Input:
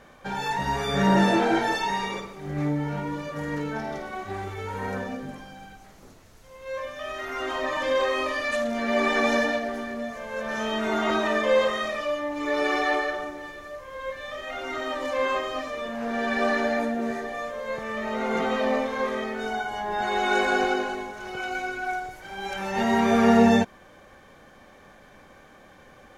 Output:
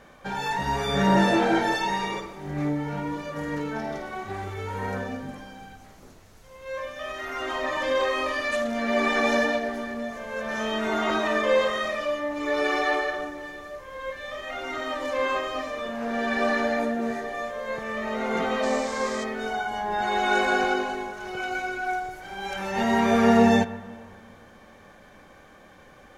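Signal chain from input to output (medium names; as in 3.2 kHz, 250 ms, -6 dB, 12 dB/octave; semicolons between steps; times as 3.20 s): 18.62–19.23 s: band noise 3.7–7.9 kHz -43 dBFS; reverberation RT60 2.2 s, pre-delay 8 ms, DRR 13.5 dB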